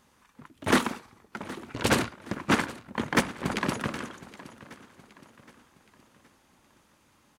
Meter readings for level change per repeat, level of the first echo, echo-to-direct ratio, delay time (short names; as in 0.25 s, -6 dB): -7.0 dB, -18.0 dB, -17.0 dB, 0.769 s